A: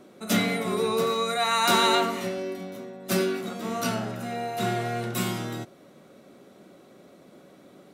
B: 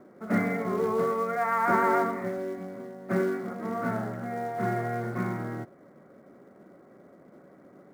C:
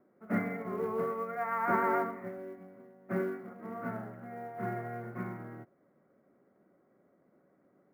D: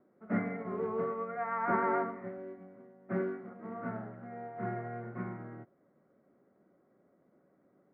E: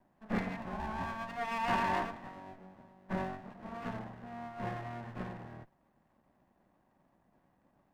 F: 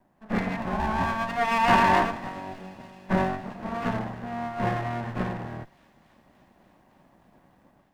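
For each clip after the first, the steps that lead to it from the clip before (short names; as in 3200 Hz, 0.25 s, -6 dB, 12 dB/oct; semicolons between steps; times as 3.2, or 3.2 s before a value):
steep low-pass 2100 Hz 72 dB/oct; in parallel at -4 dB: short-mantissa float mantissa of 2-bit; on the sum: gain -5.5 dB
band shelf 5500 Hz -10.5 dB; upward expander 1.5:1, over -42 dBFS; gain -4.5 dB
air absorption 280 m
minimum comb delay 1.1 ms
AGC gain up to 7.5 dB; thin delay 0.289 s, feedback 80%, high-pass 3000 Hz, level -20 dB; gain +4.5 dB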